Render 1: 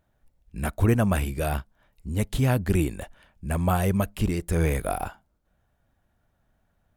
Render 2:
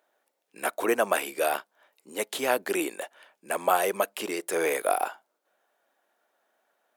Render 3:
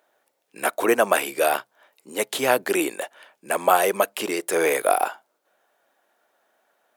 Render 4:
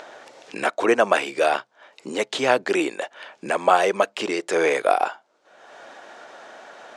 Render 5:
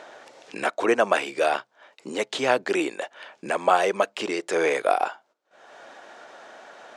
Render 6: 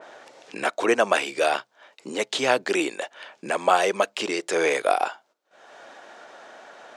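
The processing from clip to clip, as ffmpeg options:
-af "highpass=f=390:w=0.5412,highpass=f=390:w=1.3066,volume=1.58"
-af "equalizer=f=130:w=6.8:g=8,volume=1.88"
-af "lowpass=f=6800:w=0.5412,lowpass=f=6800:w=1.3066,acompressor=mode=upward:threshold=0.0631:ratio=2.5,volume=1.12"
-af "agate=range=0.2:threshold=0.00251:ratio=16:detection=peak,volume=0.75"
-af "highpass=68,adynamicequalizer=threshold=0.0178:dfrequency=2500:dqfactor=0.7:tfrequency=2500:tqfactor=0.7:attack=5:release=100:ratio=0.375:range=2.5:mode=boostabove:tftype=highshelf"

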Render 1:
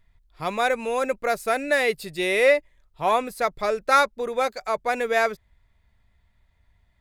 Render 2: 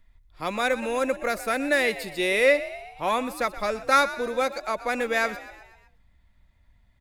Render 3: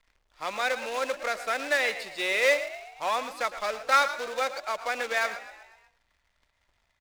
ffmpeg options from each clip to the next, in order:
-filter_complex "[0:a]acrossover=split=500|1000[s0][s1][s2];[s0]aecho=1:1:3.6:0.58[s3];[s1]acompressor=threshold=0.02:ratio=6[s4];[s3][s4][s2]amix=inputs=3:normalize=0,asplit=6[s5][s6][s7][s8][s9][s10];[s6]adelay=123,afreqshift=54,volume=0.178[s11];[s7]adelay=246,afreqshift=108,volume=0.0944[s12];[s8]adelay=369,afreqshift=162,volume=0.0501[s13];[s9]adelay=492,afreqshift=216,volume=0.0266[s14];[s10]adelay=615,afreqshift=270,volume=0.014[s15];[s5][s11][s12][s13][s14][s15]amix=inputs=6:normalize=0"
-filter_complex "[0:a]acrusher=bits=2:mode=log:mix=0:aa=0.000001,acrossover=split=490 7500:gain=0.178 1 0.2[s0][s1][s2];[s0][s1][s2]amix=inputs=3:normalize=0,aecho=1:1:109:0.188,volume=0.794"

